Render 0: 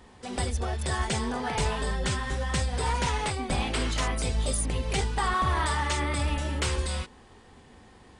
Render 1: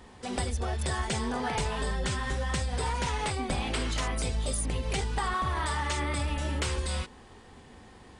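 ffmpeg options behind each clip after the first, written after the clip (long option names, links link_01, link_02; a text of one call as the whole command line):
ffmpeg -i in.wav -af "acompressor=threshold=-28dB:ratio=6,volume=1.5dB" out.wav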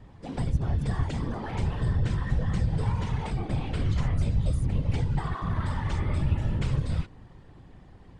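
ffmpeg -i in.wav -af "aemphasis=mode=reproduction:type=bsi,afftfilt=real='hypot(re,im)*cos(2*PI*random(0))':imag='hypot(re,im)*sin(2*PI*random(1))':win_size=512:overlap=0.75" out.wav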